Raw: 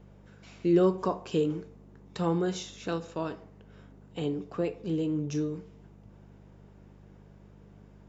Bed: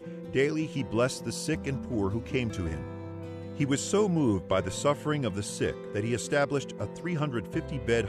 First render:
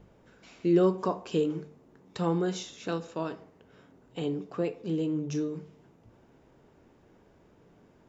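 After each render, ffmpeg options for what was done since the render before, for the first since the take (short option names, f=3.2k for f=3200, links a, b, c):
-af "bandreject=f=50:t=h:w=4,bandreject=f=100:t=h:w=4,bandreject=f=150:t=h:w=4,bandreject=f=200:t=h:w=4"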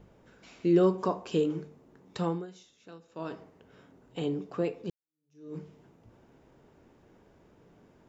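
-filter_complex "[0:a]asplit=4[a][b][c][d];[a]atrim=end=2.47,asetpts=PTS-STARTPTS,afade=t=out:st=2.2:d=0.27:silence=0.141254[e];[b]atrim=start=2.47:end=3.09,asetpts=PTS-STARTPTS,volume=-17dB[f];[c]atrim=start=3.09:end=4.9,asetpts=PTS-STARTPTS,afade=t=in:d=0.27:silence=0.141254,afade=t=out:st=1.806:d=0.004:c=hsin[g];[d]atrim=start=4.9,asetpts=PTS-STARTPTS,afade=t=in:d=0.65:c=exp[h];[e][f][g][h]concat=n=4:v=0:a=1"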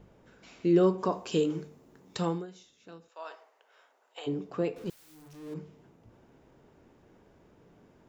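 -filter_complex "[0:a]asettb=1/sr,asplit=3[a][b][c];[a]atrim=end=1.124[d];[b]atrim=start=1.12:end=2.43,asetpts=PTS-STARTPTS,afade=t=in:d=0.004:c=qsin,afade=t=out:st=1.306:d=0.004:c=qsin,highshelf=f=3.8k:g=9[e];[c]atrim=start=2.426[f];[d][e]acrossfade=d=0.004:c1=hsin:c2=qsin[g];[g][f]acrossfade=d=0.004:c1=qsin:c2=hsin,asplit=3[h][i][j];[h]afade=t=out:st=3.08:d=0.02[k];[i]highpass=f=620:w=0.5412,highpass=f=620:w=1.3066,afade=t=in:st=3.08:d=0.02,afade=t=out:st=4.26:d=0.02[l];[j]afade=t=in:st=4.26:d=0.02[m];[k][l][m]amix=inputs=3:normalize=0,asettb=1/sr,asplit=3[n][o][p];[n]atrim=end=4.764[q];[o]atrim=start=4.76:end=5.54,asetpts=PTS-STARTPTS,afade=t=in:d=0.004:c=qsin,afade=t=out:st=0.776:d=0.004:c=qsin,aeval=exprs='val(0)+0.5*0.00473*sgn(val(0))':c=same[r];[p]atrim=start=5.536[s];[q][r]acrossfade=d=0.004:c1=hsin:c2=qsin[t];[t][s]acrossfade=d=0.004:c1=qsin:c2=hsin"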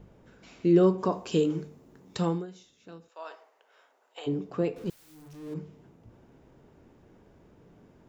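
-af "lowshelf=f=320:g=5"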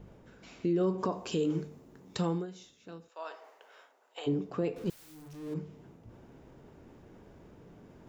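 -af "areverse,acompressor=mode=upward:threshold=-48dB:ratio=2.5,areverse,alimiter=limit=-21.5dB:level=0:latency=1:release=145"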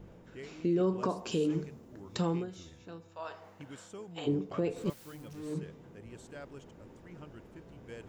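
-filter_complex "[1:a]volume=-21dB[a];[0:a][a]amix=inputs=2:normalize=0"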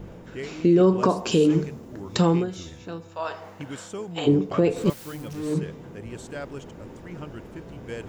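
-af "volume=11.5dB"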